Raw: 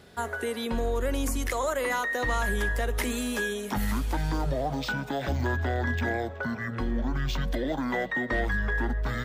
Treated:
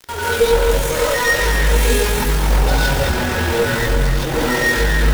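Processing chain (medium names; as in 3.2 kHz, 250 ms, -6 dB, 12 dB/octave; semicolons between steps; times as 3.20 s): comb 2.2 ms, depth 70%; in parallel at -7.5 dB: saturation -24 dBFS, distortion -13 dB; on the sum: companded quantiser 2-bit; on a send: echo that smears into a reverb 466 ms, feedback 45%, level -7 dB; on the sum: gated-style reverb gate 330 ms rising, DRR -7.5 dB; tempo 1.8×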